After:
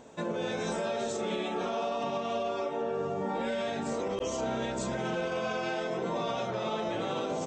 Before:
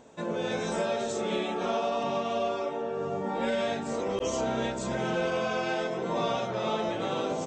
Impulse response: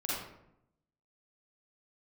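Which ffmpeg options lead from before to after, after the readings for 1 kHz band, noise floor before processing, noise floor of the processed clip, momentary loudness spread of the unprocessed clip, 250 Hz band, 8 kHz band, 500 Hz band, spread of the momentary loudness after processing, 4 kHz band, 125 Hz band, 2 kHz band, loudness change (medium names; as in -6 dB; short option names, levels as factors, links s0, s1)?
-2.5 dB, -34 dBFS, -35 dBFS, 3 LU, -2.0 dB, -2.0 dB, -2.5 dB, 1 LU, -2.5 dB, -2.0 dB, -2.5 dB, -2.5 dB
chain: -af "alimiter=level_in=1.26:limit=0.0631:level=0:latency=1:release=113,volume=0.794,volume=1.26"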